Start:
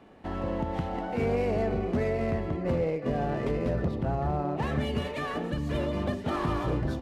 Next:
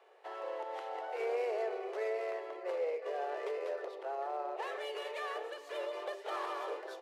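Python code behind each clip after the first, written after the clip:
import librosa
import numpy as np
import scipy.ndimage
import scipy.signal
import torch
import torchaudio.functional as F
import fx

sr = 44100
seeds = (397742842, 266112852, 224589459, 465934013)

y = scipy.signal.sosfilt(scipy.signal.butter(12, 390.0, 'highpass', fs=sr, output='sos'), x)
y = F.gain(torch.from_numpy(y), -5.5).numpy()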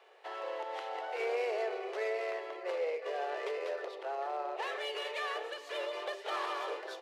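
y = fx.peak_eq(x, sr, hz=3500.0, db=7.0, octaves=2.5)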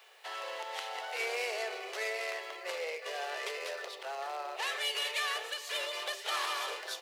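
y = fx.tilt_eq(x, sr, slope=5.0)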